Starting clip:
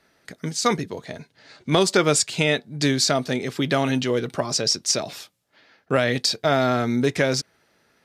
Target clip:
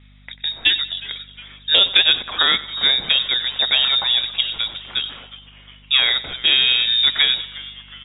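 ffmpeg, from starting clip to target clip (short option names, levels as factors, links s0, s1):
-filter_complex "[0:a]lowpass=f=3300:t=q:w=0.5098,lowpass=f=3300:t=q:w=0.6013,lowpass=f=3300:t=q:w=0.9,lowpass=f=3300:t=q:w=2.563,afreqshift=-3900,aeval=exprs='val(0)+0.00282*(sin(2*PI*50*n/s)+sin(2*PI*2*50*n/s)/2+sin(2*PI*3*50*n/s)/3+sin(2*PI*4*50*n/s)/4+sin(2*PI*5*50*n/s)/5)':c=same,asplit=2[s0][s1];[s1]asplit=5[s2][s3][s4][s5][s6];[s2]adelay=361,afreqshift=-140,volume=0.112[s7];[s3]adelay=722,afreqshift=-280,volume=0.0617[s8];[s4]adelay=1083,afreqshift=-420,volume=0.0339[s9];[s5]adelay=1444,afreqshift=-560,volume=0.0186[s10];[s6]adelay=1805,afreqshift=-700,volume=0.0102[s11];[s7][s8][s9][s10][s11]amix=inputs=5:normalize=0[s12];[s0][s12]amix=inputs=2:normalize=0,asettb=1/sr,asplit=3[s13][s14][s15];[s13]atrim=end=3.884[s16];[s14]atrim=start=3.88:end=6.03,asetpts=PTS-STARTPTS,afade=t=in:d=0.004:c=qsin,afade=t=out:st=2.146:d=0.004:c=qsin,aeval=exprs='0.473*(cos(1*acos(clip(val(0)/0.473,-1,1)))-cos(1*PI/2))+0.00422*(cos(3*acos(clip(val(0)/0.473,-1,1)))-cos(3*PI/2))':c=same[s17];[s15]atrim=start=6.026[s18];[s16][s17]acrossfade=d=0.004:c1=hsin:c2=qsin[s19];[s19][s18]acrossfade=d=0.004:c1=qsin:c2=hsin,asplit=2[s20][s21];[s21]aecho=0:1:93|186|279|372:0.141|0.0622|0.0273|0.012[s22];[s20][s22]amix=inputs=2:normalize=0,volume=1.58"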